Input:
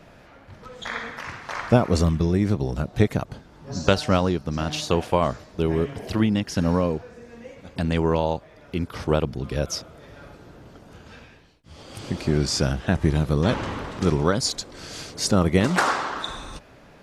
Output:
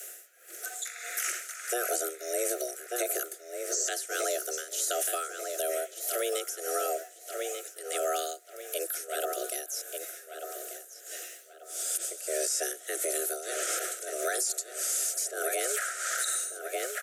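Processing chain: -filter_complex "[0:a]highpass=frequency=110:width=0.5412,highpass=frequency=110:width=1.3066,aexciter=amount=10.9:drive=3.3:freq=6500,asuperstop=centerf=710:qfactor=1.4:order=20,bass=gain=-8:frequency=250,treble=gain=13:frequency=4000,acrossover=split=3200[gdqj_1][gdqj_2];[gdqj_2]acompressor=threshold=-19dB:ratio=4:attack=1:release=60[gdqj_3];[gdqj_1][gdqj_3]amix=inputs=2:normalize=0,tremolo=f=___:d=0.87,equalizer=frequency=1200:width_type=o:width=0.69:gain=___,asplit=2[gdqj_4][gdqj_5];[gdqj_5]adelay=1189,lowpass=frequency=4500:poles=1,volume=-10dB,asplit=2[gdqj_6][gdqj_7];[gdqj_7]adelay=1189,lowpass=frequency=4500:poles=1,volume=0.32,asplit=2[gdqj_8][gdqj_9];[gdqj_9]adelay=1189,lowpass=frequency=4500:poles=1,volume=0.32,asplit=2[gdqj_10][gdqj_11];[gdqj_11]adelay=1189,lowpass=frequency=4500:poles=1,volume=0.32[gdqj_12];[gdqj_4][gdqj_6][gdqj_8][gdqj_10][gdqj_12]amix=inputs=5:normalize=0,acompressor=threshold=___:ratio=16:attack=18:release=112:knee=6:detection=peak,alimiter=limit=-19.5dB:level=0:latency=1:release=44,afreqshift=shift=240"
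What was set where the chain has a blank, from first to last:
1.6, 3.5, -27dB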